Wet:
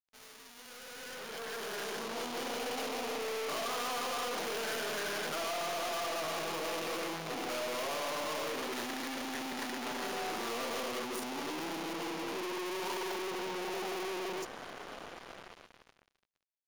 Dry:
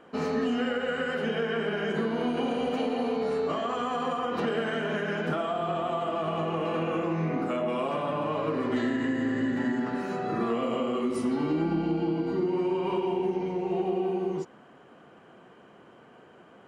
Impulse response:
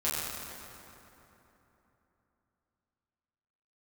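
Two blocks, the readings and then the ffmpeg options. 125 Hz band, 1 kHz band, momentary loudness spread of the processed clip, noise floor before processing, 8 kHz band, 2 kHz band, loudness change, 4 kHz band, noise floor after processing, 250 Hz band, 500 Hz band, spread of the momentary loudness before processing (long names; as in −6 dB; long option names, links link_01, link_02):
−19.0 dB, −6.0 dB, 11 LU, −54 dBFS, can't be measured, −3.5 dB, −8.0 dB, +2.0 dB, −71 dBFS, −14.5 dB, −9.5 dB, 2 LU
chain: -af "aeval=exprs='(tanh(251*val(0)+0.55)-tanh(0.55))/251':channel_layout=same,bass=frequency=250:gain=-14,treble=frequency=4000:gain=5,dynaudnorm=framelen=290:gausssize=11:maxgain=13dB,acrusher=bits=6:mix=0:aa=0.5,bandreject=frequency=7900:width=7.1"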